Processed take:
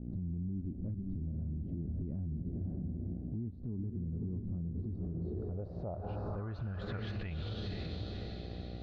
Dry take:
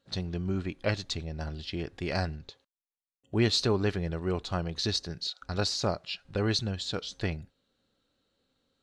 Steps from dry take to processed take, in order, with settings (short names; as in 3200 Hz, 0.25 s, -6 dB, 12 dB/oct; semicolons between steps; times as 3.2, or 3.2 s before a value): tilt -2.5 dB/oct; diffused feedback echo 0.521 s, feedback 50%, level -9.5 dB; buzz 60 Hz, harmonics 13, -43 dBFS -5 dB/oct; low-pass sweep 250 Hz -> 3900 Hz, 4.89–7.68; dynamic EQ 350 Hz, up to -5 dB, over -37 dBFS, Q 0.76; compressor 12:1, threshold -28 dBFS, peak gain reduction 15 dB; limiter -29.5 dBFS, peak gain reduction 10.5 dB; gain -1.5 dB